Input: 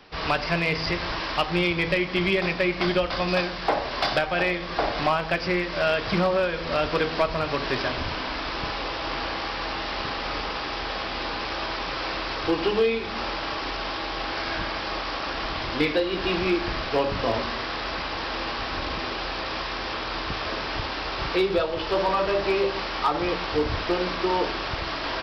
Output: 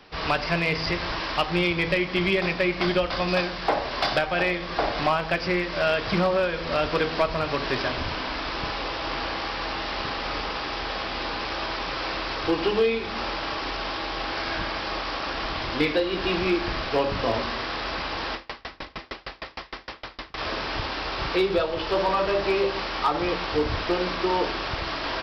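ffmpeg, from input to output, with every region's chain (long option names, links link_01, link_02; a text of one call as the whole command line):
ffmpeg -i in.wav -filter_complex "[0:a]asettb=1/sr,asplit=3[link_01][link_02][link_03];[link_01]atrim=end=18.344[link_04];[link_02]atrim=start=18.34:end=20.38,asetpts=PTS-STARTPTS,afade=type=in:duration=0.004:curve=qsin,afade=type=out:start_time=2.036:duration=0.004:curve=qsin,equalizer=frequency=2000:width=7.5:gain=6,aeval=exprs='val(0)*pow(10,-34*if(lt(mod(6.5*n/s,1),2*abs(6.5)/1000),1-mod(6.5*n/s,1)/(2*abs(6.5)/1000),(mod(6.5*n/s,1)-2*abs(6.5)/1000)/(1-2*abs(6.5)/1000))/20)':channel_layout=same[link_05];[link_03]atrim=start=20.376[link_06];[link_04][link_05]acrossfade=duration=0.004:curve1=hsin:curve2=qsin[link_07];[link_07][link_06]acrossfade=duration=0.004:curve1=qsin:curve2=hsin" out.wav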